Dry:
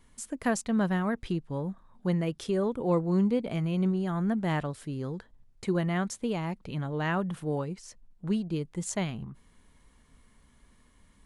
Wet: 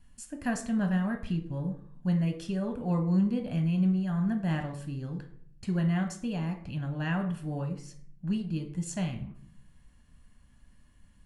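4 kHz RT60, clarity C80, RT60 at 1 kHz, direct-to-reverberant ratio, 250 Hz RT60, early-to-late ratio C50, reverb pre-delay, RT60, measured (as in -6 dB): 0.40 s, 14.5 dB, 0.50 s, 5.0 dB, 0.85 s, 10.5 dB, 3 ms, 0.60 s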